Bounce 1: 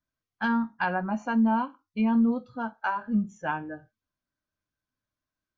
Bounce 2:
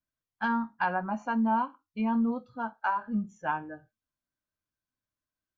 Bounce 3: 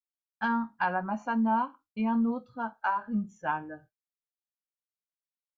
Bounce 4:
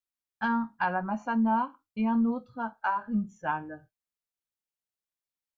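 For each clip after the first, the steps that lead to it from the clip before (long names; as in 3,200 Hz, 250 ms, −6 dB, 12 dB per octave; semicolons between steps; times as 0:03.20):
dynamic equaliser 990 Hz, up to +6 dB, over −41 dBFS, Q 1.1; level −5 dB
downward expander −51 dBFS
low-shelf EQ 120 Hz +6 dB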